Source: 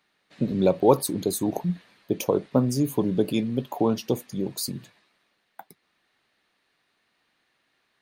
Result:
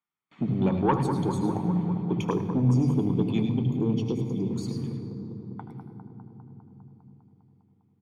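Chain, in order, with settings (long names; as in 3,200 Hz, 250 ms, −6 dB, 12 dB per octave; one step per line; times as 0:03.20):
0:02.34–0:04.53: elliptic band-stop filter 500–2,200 Hz
noise gate with hold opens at −48 dBFS
Bessel low-pass filter 5,800 Hz, order 2
low-shelf EQ 450 Hz +2.5 dB
comb filter 0.9 ms, depth 62%
soft clipping −13 dBFS, distortion −15 dB
bucket-brigade delay 201 ms, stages 2,048, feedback 75%, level −9 dB
convolution reverb RT60 3.5 s, pre-delay 75 ms, DRR 8.5 dB
level −8.5 dB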